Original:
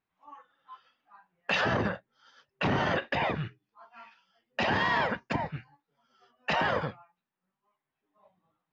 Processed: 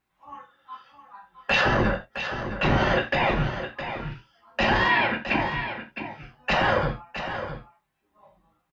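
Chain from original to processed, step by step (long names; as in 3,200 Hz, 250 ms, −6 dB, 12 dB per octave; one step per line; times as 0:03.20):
sub-octave generator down 2 octaves, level −4 dB
in parallel at +1 dB: brickwall limiter −25.5 dBFS, peak gain reduction 9 dB
0:04.88–0:05.57: on the sum: loudspeaker in its box 130–4,300 Hz, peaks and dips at 160 Hz −7 dB, 330 Hz +4 dB, 490 Hz −8 dB, 1,200 Hz −7 dB, 2,500 Hz +9 dB
single-tap delay 662 ms −9.5 dB
reverb whose tail is shaped and stops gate 110 ms falling, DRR 1.5 dB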